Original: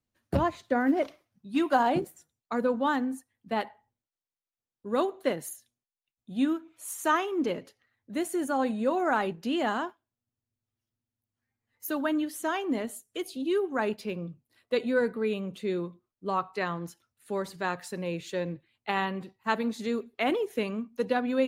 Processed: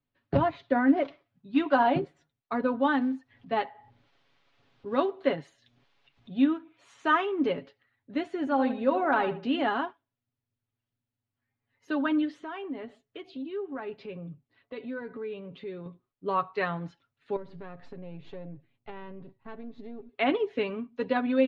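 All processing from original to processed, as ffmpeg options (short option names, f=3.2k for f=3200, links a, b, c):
-filter_complex "[0:a]asettb=1/sr,asplit=3[a][b][c];[a]atrim=end=2.834[d];[b]atrim=start=2.83:end=6.31,asetpts=PTS-STARTPTS,afade=t=in:d=0.004:c=qsin,afade=t=out:st=3.476:d=0.004:c=qsin,acrusher=bits=8:mode=log:mix=0:aa=0.000001,acompressor=mode=upward:threshold=-41dB:ratio=2.5:attack=3.2:release=140:knee=2.83:detection=peak[e];[c]atrim=start=6.306[f];[d][e]acrossfade=d=0.004:c1=hsin:c2=qsin[g];[g][f]acrossfade=d=0.004:c1=qsin:c2=hsin,asettb=1/sr,asplit=3[h][i][j];[h]atrim=end=8.394[k];[i]atrim=start=8.39:end=9.66,asetpts=PTS-STARTPTS,afade=t=in:d=0.004:c=qsin,afade=t=out:st=1.266:d=0.004:c=qsin,asoftclip=type=hard:threshold=-15dB,asplit=2[l][m];[m]adelay=77,lowpass=f=2k:p=1,volume=-11dB,asplit=2[n][o];[o]adelay=77,lowpass=f=2k:p=1,volume=0.31,asplit=2[p][q];[q]adelay=77,lowpass=f=2k:p=1,volume=0.31[r];[l][n][p][r]amix=inputs=4:normalize=0,atrim=end_sample=56007[s];[j]atrim=start=9.656[t];[k][s]acrossfade=d=0.004:c1=hsin:c2=qsin[u];[u][t]acrossfade=d=0.004:c1=qsin:c2=hsin,asettb=1/sr,asplit=3[v][w][x];[v]atrim=end=12.394[y];[w]atrim=start=12.39:end=15.86,asetpts=PTS-STARTPTS,afade=t=in:d=0.004:c=qsin,afade=t=out:st=3.466:d=0.004:c=qsin,highshelf=f=5.3k:g=-10,acompressor=threshold=-39dB:ratio=2.5:attack=3.2:release=140:knee=1:detection=peak[z];[x]atrim=start=15.856[aa];[y][z]acrossfade=d=0.004:c1=hsin:c2=qsin[ab];[ab][aa]acrossfade=d=0.004:c1=qsin:c2=hsin,asettb=1/sr,asplit=3[ac][ad][ae];[ac]atrim=end=17.364[af];[ad]atrim=start=17.36:end=20.09,asetpts=PTS-STARTPTS,afade=t=in:d=0.004:c=qsin,afade=t=out:st=2.726:d=0.004:c=qsin,aeval=exprs='if(lt(val(0),0),0.447*val(0),val(0))':c=same,tiltshelf=f=770:g=7.5,acompressor=threshold=-42dB:ratio=3:attack=3.2:release=140:knee=1:detection=peak[ag];[ae]atrim=start=20.086[ah];[af][ag]acrossfade=d=0.004:c1=hsin:c2=qsin[ai];[ai][ah]acrossfade=d=0.004:c1=qsin:c2=hsin,lowpass=f=3.8k:w=0.5412,lowpass=f=3.8k:w=1.3066,aecho=1:1:7.2:0.58"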